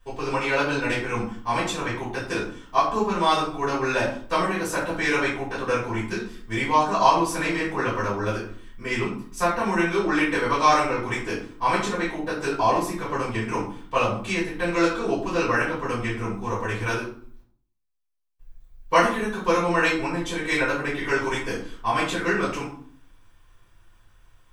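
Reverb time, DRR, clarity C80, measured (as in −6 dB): 0.55 s, −11.0 dB, 9.5 dB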